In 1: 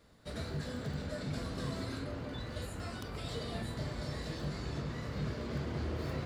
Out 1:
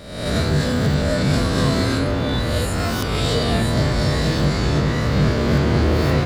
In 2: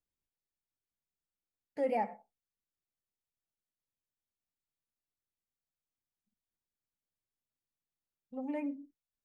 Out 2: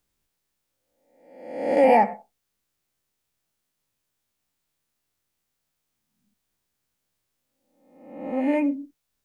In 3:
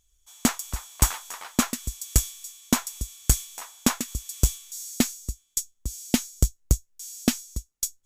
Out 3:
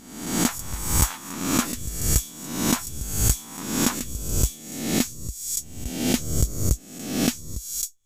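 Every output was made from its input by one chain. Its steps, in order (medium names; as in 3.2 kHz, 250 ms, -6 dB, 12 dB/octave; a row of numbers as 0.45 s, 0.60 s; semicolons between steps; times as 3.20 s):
reverse spectral sustain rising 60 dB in 0.87 s; peak normalisation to -6 dBFS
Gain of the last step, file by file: +18.0 dB, +13.0 dB, -3.0 dB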